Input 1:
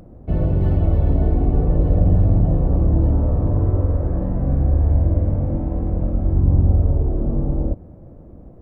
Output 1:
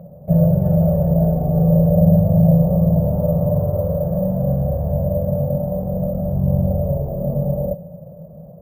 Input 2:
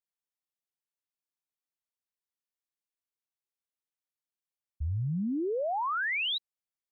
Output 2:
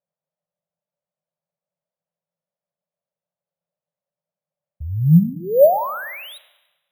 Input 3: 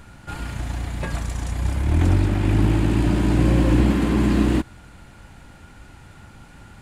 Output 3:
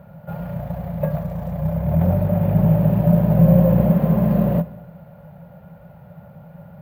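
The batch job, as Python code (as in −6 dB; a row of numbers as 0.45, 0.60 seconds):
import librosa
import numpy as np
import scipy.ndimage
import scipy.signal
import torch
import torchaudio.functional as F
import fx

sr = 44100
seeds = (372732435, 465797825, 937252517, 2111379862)

y = fx.double_bandpass(x, sr, hz=310.0, octaves=1.8)
y = fx.rev_schroeder(y, sr, rt60_s=1.1, comb_ms=31, drr_db=15.5)
y = np.repeat(scipy.signal.resample_poly(y, 1, 3), 3)[:len(y)]
y = y * 10.0 ** (-3 / 20.0) / np.max(np.abs(y))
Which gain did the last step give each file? +14.0, +24.0, +15.0 decibels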